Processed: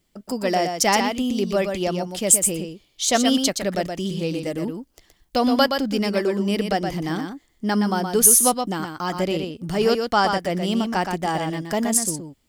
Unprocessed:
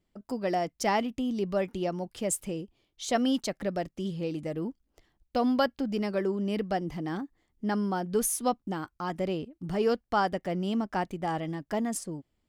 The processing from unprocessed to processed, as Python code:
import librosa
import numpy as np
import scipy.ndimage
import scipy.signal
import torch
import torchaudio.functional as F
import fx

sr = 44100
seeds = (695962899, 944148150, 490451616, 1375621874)

y = fx.high_shelf(x, sr, hz=3100.0, db=11.5)
y = y + 10.0 ** (-6.0 / 20.0) * np.pad(y, (int(121 * sr / 1000.0), 0))[:len(y)]
y = F.gain(torch.from_numpy(y), 6.0).numpy()